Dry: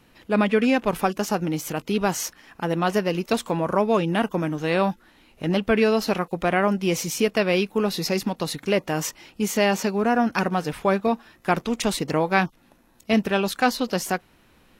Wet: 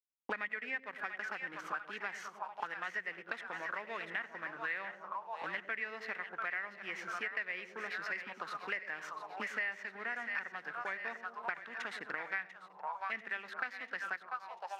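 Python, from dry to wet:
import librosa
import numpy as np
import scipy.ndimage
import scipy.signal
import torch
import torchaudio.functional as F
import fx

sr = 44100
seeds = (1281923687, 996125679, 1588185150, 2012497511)

p1 = fx.backlash(x, sr, play_db=-30.0)
p2 = p1 + fx.echo_split(p1, sr, split_hz=590.0, low_ms=105, high_ms=692, feedback_pct=52, wet_db=-9.5, dry=0)
p3 = fx.auto_wah(p2, sr, base_hz=710.0, top_hz=1900.0, q=8.7, full_db=-19.5, direction='up')
p4 = p3 + 10.0 ** (-23.5 / 20.0) * np.pad(p3, (int(94 * sr / 1000.0), 0))[:len(p3)]
y = fx.band_squash(p4, sr, depth_pct=100)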